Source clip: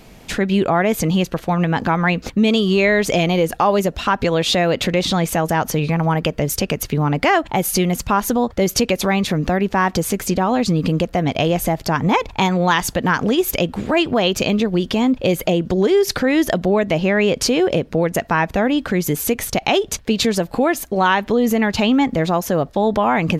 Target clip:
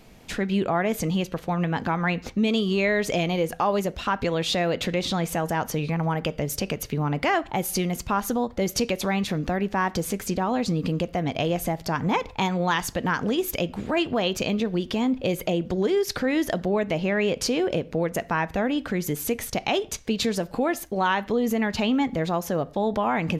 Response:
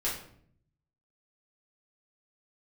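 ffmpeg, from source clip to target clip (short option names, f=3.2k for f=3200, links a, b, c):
-filter_complex "[0:a]asplit=2[a][b];[1:a]atrim=start_sample=2205,afade=t=out:st=0.21:d=0.01,atrim=end_sample=9702,lowpass=8.4k[c];[b][c]afir=irnorm=-1:irlink=0,volume=-21.5dB[d];[a][d]amix=inputs=2:normalize=0,volume=-8dB"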